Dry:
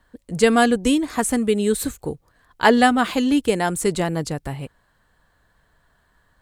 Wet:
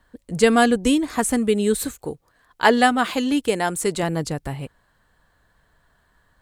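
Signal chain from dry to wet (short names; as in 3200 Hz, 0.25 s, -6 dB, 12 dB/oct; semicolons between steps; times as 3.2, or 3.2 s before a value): 1.84–4.03 low shelf 210 Hz -7.5 dB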